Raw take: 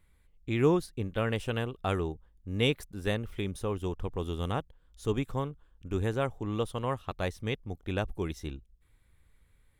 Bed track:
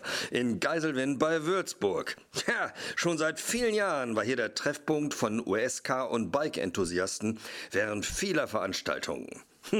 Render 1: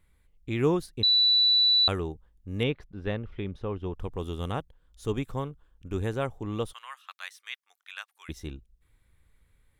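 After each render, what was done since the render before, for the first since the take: 1.03–1.88 bleep 3960 Hz -18 dBFS; 2.63–3.95 air absorption 260 m; 6.73–8.29 HPF 1300 Hz 24 dB/oct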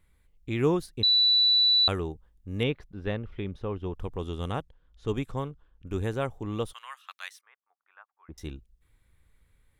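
4.17–5.87 low-pass opened by the level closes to 2600 Hz, open at -26 dBFS; 7.41–8.38 ladder low-pass 1400 Hz, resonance 30%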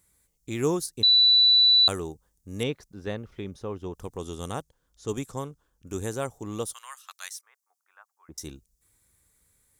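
HPF 140 Hz 6 dB/oct; resonant high shelf 4400 Hz +13 dB, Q 1.5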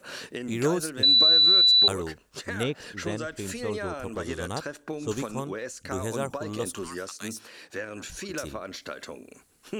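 add bed track -6 dB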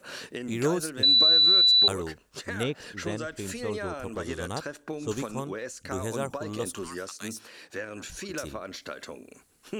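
gain -1 dB

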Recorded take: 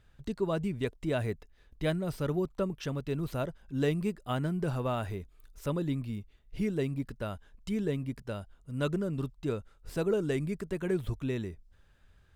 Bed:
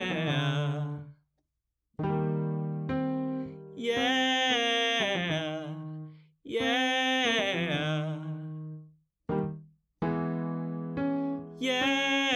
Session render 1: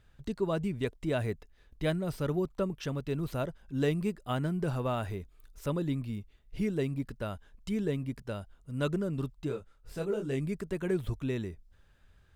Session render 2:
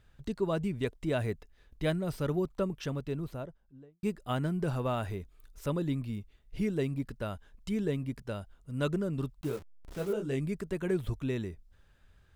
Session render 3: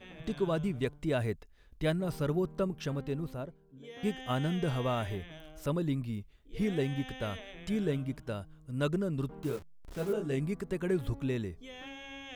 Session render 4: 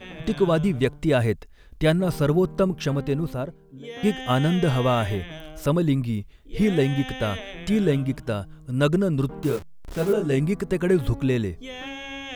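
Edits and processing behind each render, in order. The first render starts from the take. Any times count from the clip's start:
9.47–10.39 detuned doubles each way 30 cents -> 17 cents
2.76–4.03 studio fade out; 9.41–10.13 level-crossing sampler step -43.5 dBFS
add bed -19 dB
gain +10.5 dB

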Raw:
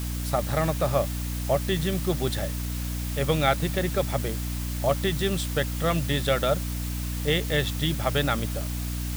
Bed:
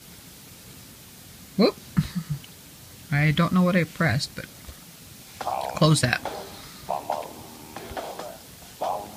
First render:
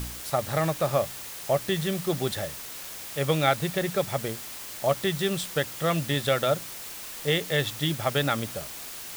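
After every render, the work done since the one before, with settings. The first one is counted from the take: de-hum 60 Hz, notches 5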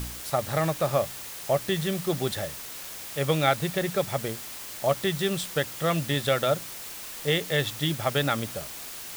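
nothing audible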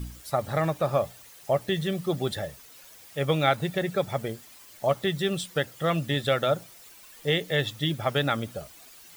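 denoiser 13 dB, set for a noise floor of -39 dBFS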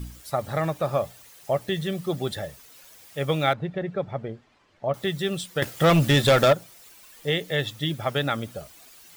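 3.53–4.94 tape spacing loss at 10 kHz 34 dB; 5.62–6.53 sample leveller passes 3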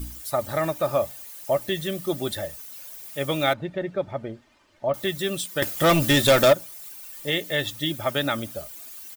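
high shelf 8500 Hz +11.5 dB; comb 3.3 ms, depth 44%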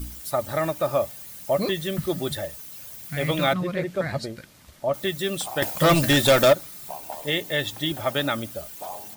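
add bed -8.5 dB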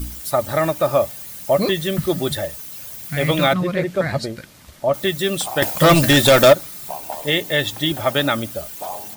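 gain +6 dB; limiter -3 dBFS, peak gain reduction 2 dB

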